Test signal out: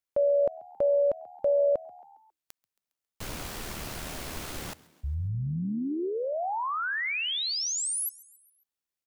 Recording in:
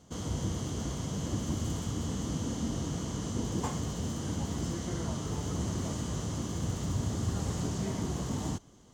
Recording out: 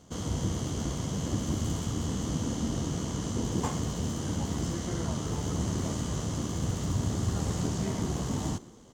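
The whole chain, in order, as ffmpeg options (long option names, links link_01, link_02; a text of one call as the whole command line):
ffmpeg -i in.wav -filter_complex "[0:a]asplit=5[link_01][link_02][link_03][link_04][link_05];[link_02]adelay=136,afreqshift=77,volume=-22dB[link_06];[link_03]adelay=272,afreqshift=154,volume=-27.4dB[link_07];[link_04]adelay=408,afreqshift=231,volume=-32.7dB[link_08];[link_05]adelay=544,afreqshift=308,volume=-38.1dB[link_09];[link_01][link_06][link_07][link_08][link_09]amix=inputs=5:normalize=0,tremolo=f=76:d=0.333,volume=4dB" out.wav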